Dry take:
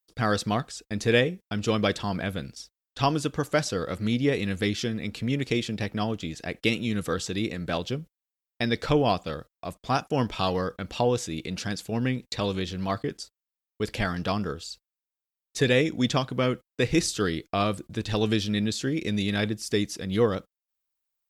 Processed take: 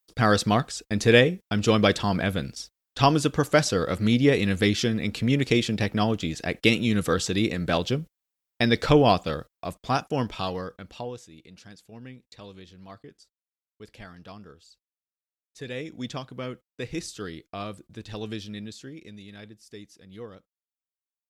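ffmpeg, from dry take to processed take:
ffmpeg -i in.wav -af "volume=11.5dB,afade=type=out:start_time=9.16:duration=1.46:silence=0.316228,afade=type=out:start_time=10.62:duration=0.65:silence=0.281838,afade=type=in:start_time=15.57:duration=0.43:silence=0.446684,afade=type=out:start_time=18.4:duration=0.79:silence=0.375837" out.wav

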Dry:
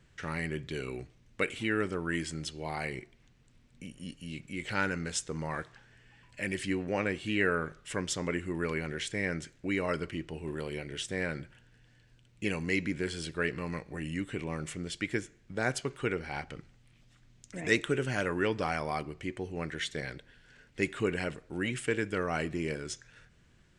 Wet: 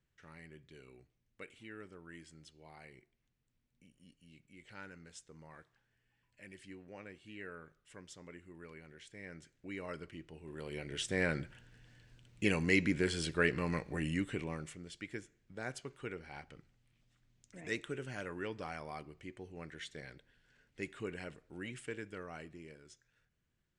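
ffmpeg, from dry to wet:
ffmpeg -i in.wav -af "volume=1dB,afade=type=in:start_time=9.04:duration=0.82:silence=0.421697,afade=type=in:start_time=10.48:duration=0.78:silence=0.223872,afade=type=out:start_time=14.05:duration=0.73:silence=0.237137,afade=type=out:start_time=21.77:duration=0.96:silence=0.398107" out.wav

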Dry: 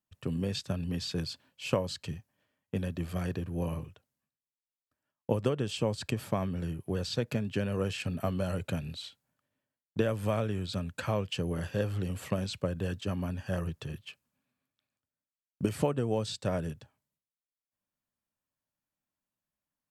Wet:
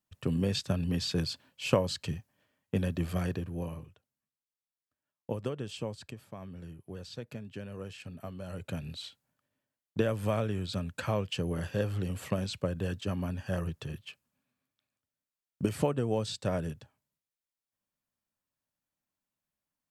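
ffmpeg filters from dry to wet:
ffmpeg -i in.wav -af "volume=20dB,afade=type=out:start_time=3.07:duration=0.67:silence=0.354813,afade=type=out:start_time=5.79:duration=0.48:silence=0.281838,afade=type=in:start_time=6.27:duration=0.24:silence=0.473151,afade=type=in:start_time=8.42:duration=0.61:silence=0.298538" out.wav

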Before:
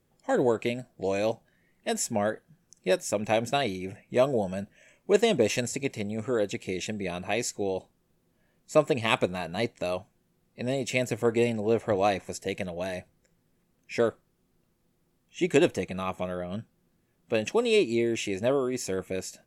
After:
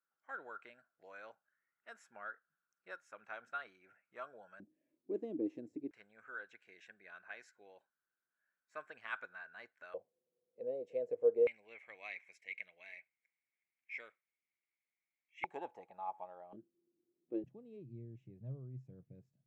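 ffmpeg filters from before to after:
ffmpeg -i in.wav -af "asetnsamples=nb_out_samples=441:pad=0,asendcmd='4.6 bandpass f 310;5.91 bandpass f 1500;9.94 bandpass f 490;11.47 bandpass f 2200;15.44 bandpass f 850;16.53 bandpass f 340;17.44 bandpass f 130',bandpass=frequency=1400:width_type=q:width=13:csg=0" out.wav

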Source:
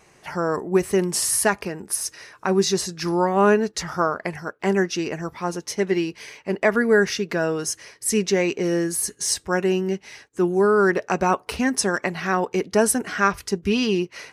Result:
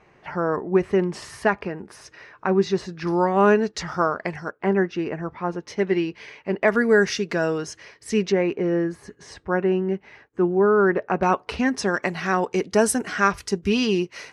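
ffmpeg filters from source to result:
ffmpeg -i in.wav -af "asetnsamples=nb_out_samples=441:pad=0,asendcmd='3.07 lowpass f 5200;4.51 lowpass f 2000;5.67 lowpass f 3300;6.68 lowpass f 8000;7.58 lowpass f 3800;8.32 lowpass f 1800;11.23 lowpass f 4400;12.03 lowpass f 9300',lowpass=2500" out.wav

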